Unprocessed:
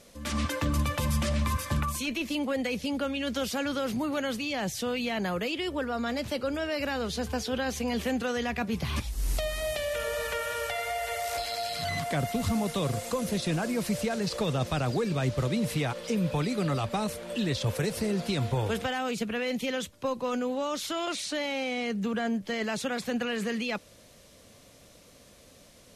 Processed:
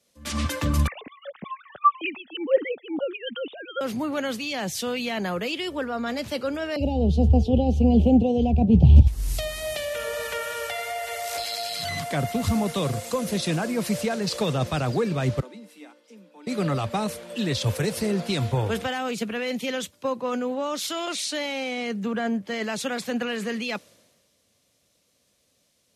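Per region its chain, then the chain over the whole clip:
0:00.87–0:03.81: three sine waves on the formant tracks + all-pass phaser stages 8, 2 Hz, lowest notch 290–1,700 Hz
0:06.76–0:09.07: elliptic band-stop filter 810–2,800 Hz + RIAA equalisation playback
0:15.40–0:16.47: Butterworth high-pass 190 Hz 96 dB per octave + tuned comb filter 300 Hz, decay 0.48 s, harmonics odd, mix 80%
whole clip: high-pass filter 64 Hz; multiband upward and downward expander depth 70%; level +3.5 dB

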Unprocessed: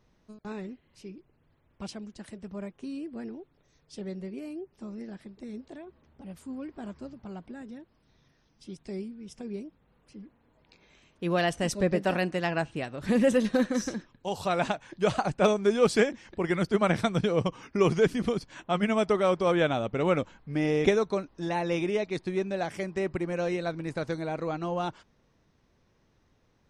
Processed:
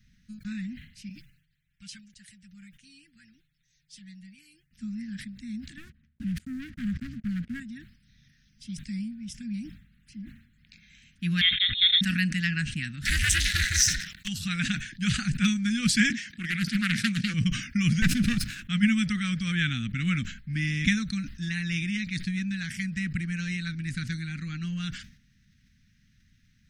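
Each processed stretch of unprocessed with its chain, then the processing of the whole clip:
0:01.09–0:04.71: guitar amp tone stack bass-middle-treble 5-5-5 + comb filter 6.4 ms, depth 66%
0:05.77–0:07.60: low-pass filter 1,900 Hz 6 dB per octave + noise gate −52 dBFS, range −37 dB + leveller curve on the samples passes 3
0:11.41–0:12.01: linear-phase brick-wall high-pass 190 Hz + voice inversion scrambler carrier 3,900 Hz
0:13.05–0:14.28: leveller curve on the samples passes 2 + tilt shelving filter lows −8.5 dB, about 720 Hz + ring modulation 170 Hz
0:16.10–0:17.34: high-pass filter 220 Hz + highs frequency-modulated by the lows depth 0.41 ms
0:18.02–0:18.63: lower of the sound and its delayed copy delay 0.77 ms + parametric band 600 Hz +11.5 dB 2.1 octaves
whole clip: elliptic band-stop filter 220–1,700 Hz, stop band 40 dB; level that may fall only so fast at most 96 dB per second; level +6 dB

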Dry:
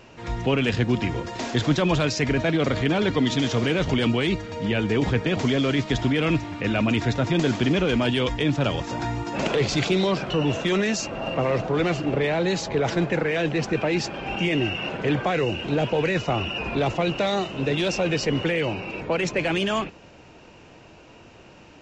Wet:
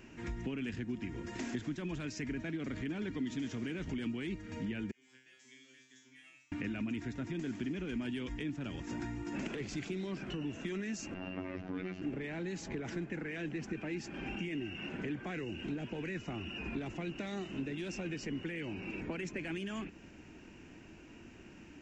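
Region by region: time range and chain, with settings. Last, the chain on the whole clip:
0:04.91–0:06.52: first difference + tuned comb filter 130 Hz, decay 0.55 s, mix 100%
0:11.14–0:12.02: log-companded quantiser 8 bits + phases set to zero 92.4 Hz + low-pass filter 5,200 Hz 24 dB per octave
whole clip: flat-topped bell 780 Hz −9 dB; downward compressor 6 to 1, threshold −33 dBFS; octave-band graphic EQ 125/250/500/4,000 Hz −6/+4/−4/−11 dB; level −2.5 dB

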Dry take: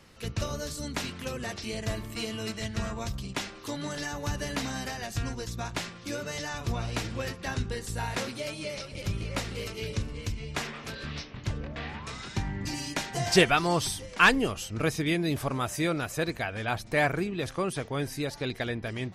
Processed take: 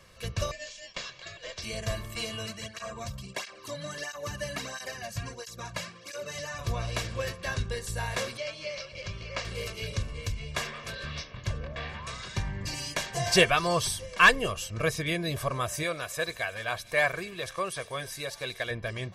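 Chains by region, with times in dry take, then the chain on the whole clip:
0:00.51–0:01.58: Chebyshev band-pass filter 620–5,800 Hz, order 4 + ring modulation 1,200 Hz
0:02.46–0:06.59: notch filter 3,500 Hz, Q 17 + through-zero flanger with one copy inverted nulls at 1.5 Hz, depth 2.9 ms
0:08.37–0:09.45: low-pass filter 5,900 Hz 24 dB per octave + low-shelf EQ 440 Hz −8 dB + notch filter 3,700 Hz, Q 11
0:15.83–0:18.71: low-shelf EQ 370 Hz −9.5 dB + delay with a high-pass on its return 95 ms, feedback 83%, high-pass 4,000 Hz, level −14.5 dB
whole clip: low-shelf EQ 430 Hz −3 dB; notch filter 430 Hz, Q 12; comb filter 1.8 ms, depth 63%

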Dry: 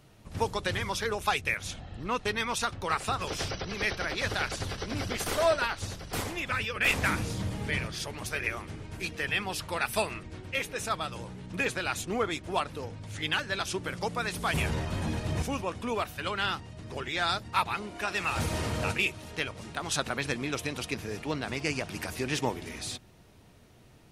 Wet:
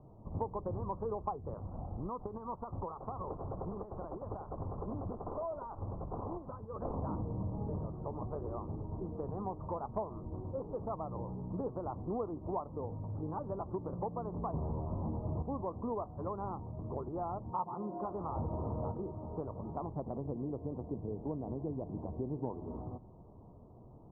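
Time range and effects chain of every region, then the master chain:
0:01.65–0:06.82: parametric band 2,300 Hz +8.5 dB 1.8 octaves + downward compressor 10 to 1, threshold −32 dBFS
0:17.51–0:18.05: high-pass filter 130 Hz + comb filter 5.6 ms, depth 73%
0:19.86–0:22.50: parametric band 1,400 Hz −14.5 dB 1.2 octaves + single-tap delay 171 ms −17 dB
whole clip: Butterworth low-pass 1,100 Hz 72 dB per octave; downward compressor 3 to 1, threshold −38 dBFS; level +2 dB

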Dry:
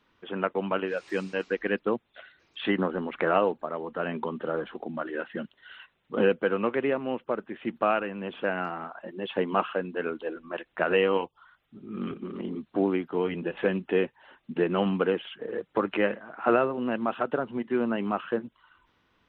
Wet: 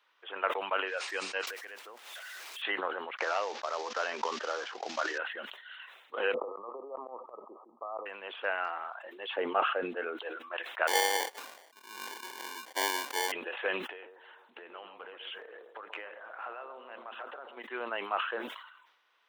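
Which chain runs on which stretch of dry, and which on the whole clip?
0:01.47–0:02.62: converter with a step at zero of −39 dBFS + downward compressor 3 to 1, threshold −43 dBFS
0:03.17–0:05.18: variable-slope delta modulation 32 kbit/s + downward expander −46 dBFS + multiband upward and downward compressor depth 100%
0:06.34–0:08.06: compressor whose output falls as the input rises −28 dBFS, ratio −0.5 + linear-phase brick-wall low-pass 1,300 Hz + volume swells 158 ms
0:09.36–0:10.17: spectral tilt −3.5 dB per octave + notch filter 1,000 Hz, Q 5.7
0:10.87–0:13.32: noise gate −47 dBFS, range −9 dB + sample-rate reduction 1,300 Hz
0:13.84–0:17.57: downward compressor 10 to 1, threshold −35 dBFS + bucket-brigade delay 134 ms, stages 1,024, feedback 44%, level −7.5 dB
whole clip: Bessel high-pass filter 800 Hz, order 4; level that may fall only so fast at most 60 dB per second

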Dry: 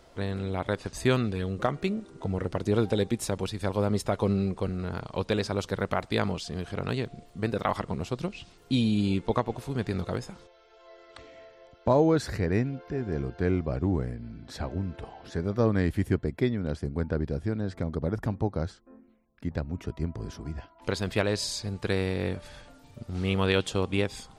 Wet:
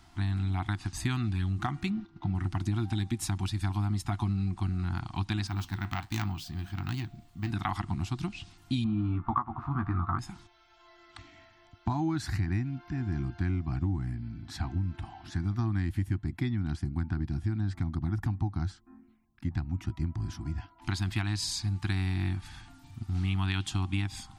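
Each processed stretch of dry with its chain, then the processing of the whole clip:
0:01.90–0:02.35: low-pass filter 4,700 Hz 24 dB per octave + comb filter 5.7 ms, depth 33% + noise gate −46 dBFS, range −9 dB
0:05.47–0:07.50: phase distortion by the signal itself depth 0.12 ms + bad sample-rate conversion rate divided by 2×, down none, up hold + flanger 1.3 Hz, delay 6.1 ms, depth 7.8 ms, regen −69%
0:08.84–0:10.19: low-pass with resonance 1,200 Hz, resonance Q 8.2 + double-tracking delay 13 ms −5 dB
whole clip: elliptic band-stop filter 340–730 Hz, stop band 40 dB; parametric band 99 Hz +7.5 dB 0.62 octaves; downward compressor, threshold −26 dBFS

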